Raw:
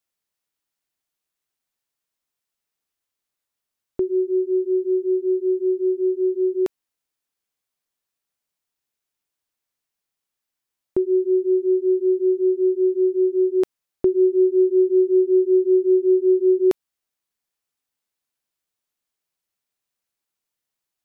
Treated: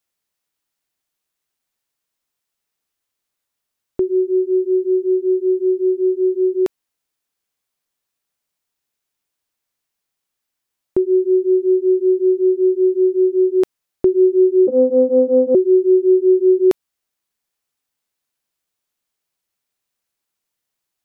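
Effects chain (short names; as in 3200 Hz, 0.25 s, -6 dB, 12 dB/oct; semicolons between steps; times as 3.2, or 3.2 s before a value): 14.67–15.55 vocoder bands 16, saw 256 Hz; gain +4 dB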